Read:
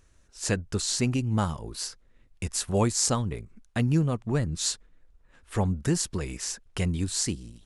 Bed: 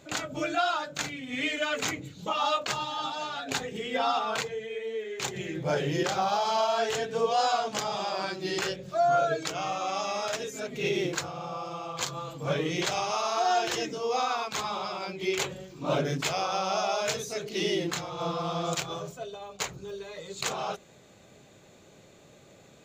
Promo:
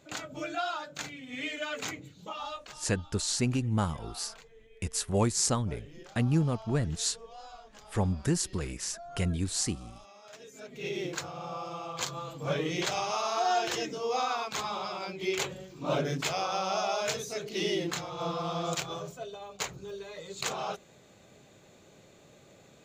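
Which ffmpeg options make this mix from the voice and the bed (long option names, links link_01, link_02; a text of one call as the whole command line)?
ffmpeg -i stem1.wav -i stem2.wav -filter_complex "[0:a]adelay=2400,volume=-2.5dB[link_01];[1:a]volume=14.5dB,afade=type=out:start_time=1.96:duration=0.89:silence=0.149624,afade=type=in:start_time=10.23:duration=1.29:silence=0.0944061[link_02];[link_01][link_02]amix=inputs=2:normalize=0" out.wav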